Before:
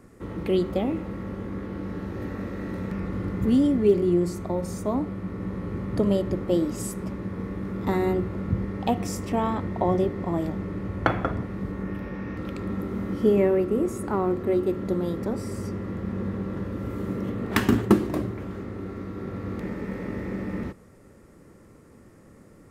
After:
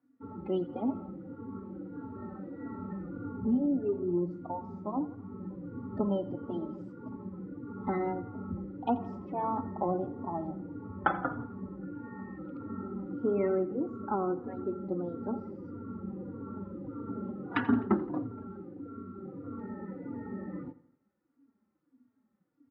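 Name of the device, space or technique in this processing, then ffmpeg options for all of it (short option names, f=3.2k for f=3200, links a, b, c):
barber-pole flanger into a guitar amplifier: -filter_complex "[0:a]asettb=1/sr,asplit=3[a][b][c];[a]atrim=end=3.384[d];[b]atrim=start=3.38:end=4.31,asetpts=PTS-STARTPTS,afade=t=in:d=0.004:c=qsin,afade=t=out:st=0.926:d=0.004:c=qsin,highshelf=f=3.9k:g=-12[e];[c]atrim=start=4.306[f];[d][e]acrossfade=d=0.004:c1=hsin:c2=qsin[g];[g][f]acrossfade=d=0.004:c1=qsin:c2=hsin,asplit=2[h][i];[i]adelay=3.6,afreqshift=-1.6[j];[h][j]amix=inputs=2:normalize=1,asoftclip=type=tanh:threshold=-10.5dB,highpass=93,equalizer=f=260:t=q:w=4:g=9,equalizer=f=840:t=q:w=4:g=9,equalizer=f=1.4k:t=q:w=4:g=8,lowpass=f=4.5k:w=0.5412,lowpass=f=4.5k:w=1.3066,afftdn=nr=22:nf=-34,lowshelf=f=460:g=-3.5,aecho=1:1:85|170|255|340:0.141|0.065|0.0299|0.0137,volume=-5.5dB"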